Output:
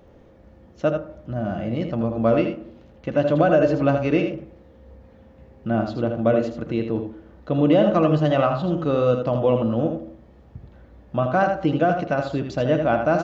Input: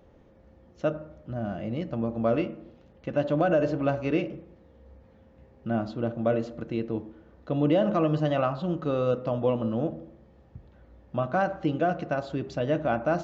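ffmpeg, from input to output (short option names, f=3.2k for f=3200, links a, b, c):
-af "aecho=1:1:80:0.447,volume=5.5dB"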